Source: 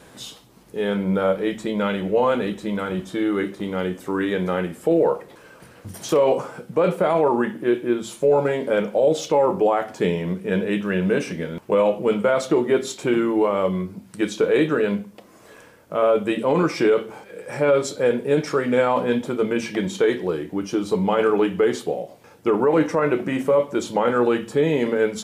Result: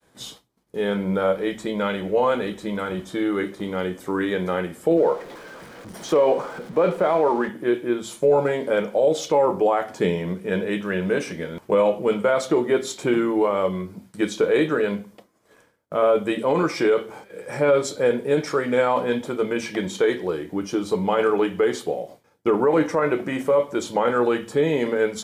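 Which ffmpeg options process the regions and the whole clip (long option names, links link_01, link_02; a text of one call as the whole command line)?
ffmpeg -i in.wav -filter_complex "[0:a]asettb=1/sr,asplit=3[link_01][link_02][link_03];[link_01]atrim=end=4.974[link_04];[link_02]atrim=start=4.97:end=7.49,asetpts=PTS-STARTPTS,afade=type=in:duration=0.004:curve=qsin,afade=type=out:start_time=2.516:duration=0.004:curve=qsin,aeval=exprs='val(0)+0.5*0.0168*sgn(val(0))':channel_layout=same,lowpass=frequency=3300:poles=1,equalizer=frequency=94:width_type=o:width=0.83:gain=-14.5[link_05];[link_03]atrim=start=7.486[link_06];[link_04][link_05]acrossfade=duration=0.004:curve1=hsin:curve2=qsin[link_07];[link_07][link_06]acrossfade=duration=0.004:curve1=qsin:curve2=hsin,bandreject=frequency=2700:width=13,agate=range=-33dB:threshold=-38dB:ratio=3:detection=peak,adynamicequalizer=threshold=0.0224:dfrequency=180:dqfactor=0.78:tfrequency=180:tqfactor=0.78:attack=5:release=100:ratio=0.375:range=2.5:mode=cutabove:tftype=bell" out.wav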